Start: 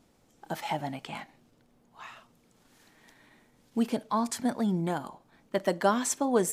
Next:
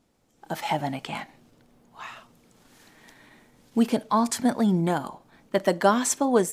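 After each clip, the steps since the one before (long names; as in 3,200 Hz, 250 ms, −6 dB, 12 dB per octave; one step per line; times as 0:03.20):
automatic gain control gain up to 10 dB
level −4 dB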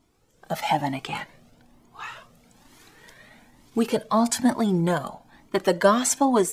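flanger whose copies keep moving one way rising 1.1 Hz
level +7 dB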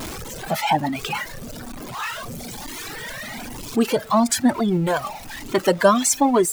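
converter with a step at zero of −27.5 dBFS
reverb reduction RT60 1.7 s
level +2.5 dB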